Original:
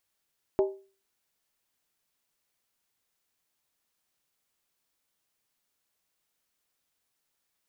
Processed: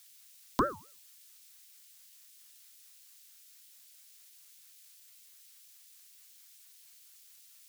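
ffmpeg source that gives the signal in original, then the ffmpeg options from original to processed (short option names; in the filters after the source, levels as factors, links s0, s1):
-f lavfi -i "aevalsrc='0.126*pow(10,-3*t/0.37)*sin(2*PI*389*t)+0.0531*pow(10,-3*t/0.293)*sin(2*PI*620.1*t)+0.0224*pow(10,-3*t/0.253)*sin(2*PI*830.9*t)+0.00944*pow(10,-3*t/0.244)*sin(2*PI*893.1*t)+0.00398*pow(10,-3*t/0.227)*sin(2*PI*1032*t)':d=0.63:s=44100"
-filter_complex "[0:a]lowshelf=f=370:g=5.5,acrossover=split=290|970[s0][s1][s2];[s2]aexciter=amount=10.7:drive=6.3:freq=2100[s3];[s0][s1][s3]amix=inputs=3:normalize=0,aeval=exprs='val(0)*sin(2*PI*730*n/s+730*0.35/4.5*sin(2*PI*4.5*n/s))':c=same"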